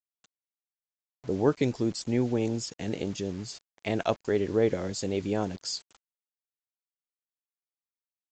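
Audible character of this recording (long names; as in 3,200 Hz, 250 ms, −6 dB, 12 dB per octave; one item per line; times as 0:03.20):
a quantiser's noise floor 8 bits, dither none
AAC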